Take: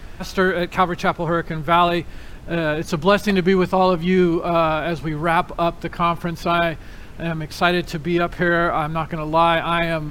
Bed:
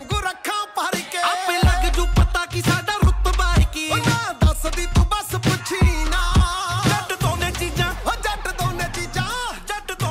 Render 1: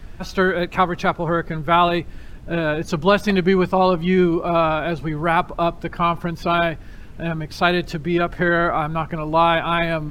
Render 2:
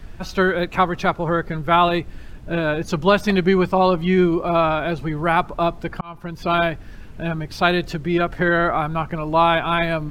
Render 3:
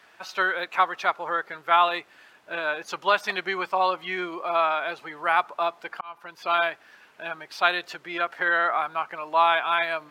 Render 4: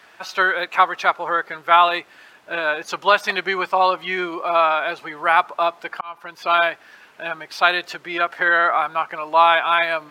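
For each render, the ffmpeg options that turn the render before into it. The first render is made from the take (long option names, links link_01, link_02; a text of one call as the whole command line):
ffmpeg -i in.wav -af "afftdn=noise_reduction=6:noise_floor=-37" out.wav
ffmpeg -i in.wav -filter_complex "[0:a]asplit=2[link_01][link_02];[link_01]atrim=end=6.01,asetpts=PTS-STARTPTS,afade=type=out:start_time=6.006:duration=0.004:curve=hsin[link_03];[link_02]atrim=start=6.01,asetpts=PTS-STARTPTS,afade=type=in:duration=0.53[link_04];[link_03][link_04]concat=n=2:v=0:a=1" out.wav
ffmpeg -i in.wav -af "highpass=900,highshelf=frequency=3800:gain=-7" out.wav
ffmpeg -i in.wav -af "volume=6dB,alimiter=limit=-2dB:level=0:latency=1" out.wav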